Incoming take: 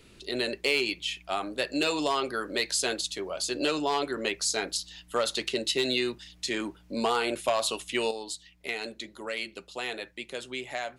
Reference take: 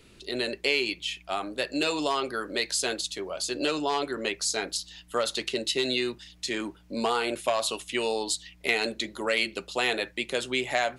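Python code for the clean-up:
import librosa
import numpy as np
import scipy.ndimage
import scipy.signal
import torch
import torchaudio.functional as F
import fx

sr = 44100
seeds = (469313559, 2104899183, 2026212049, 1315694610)

y = fx.fix_declip(x, sr, threshold_db=-17.0)
y = fx.gain(y, sr, db=fx.steps((0.0, 0.0), (8.11, 8.0)))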